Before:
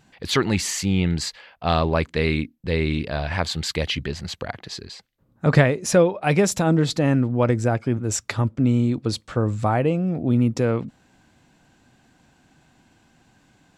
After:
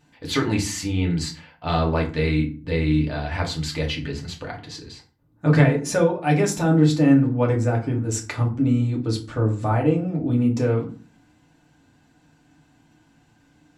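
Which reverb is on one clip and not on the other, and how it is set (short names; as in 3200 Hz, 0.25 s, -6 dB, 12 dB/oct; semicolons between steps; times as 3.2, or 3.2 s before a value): FDN reverb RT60 0.39 s, low-frequency decay 1.5×, high-frequency decay 0.65×, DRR -1.5 dB; gain -6 dB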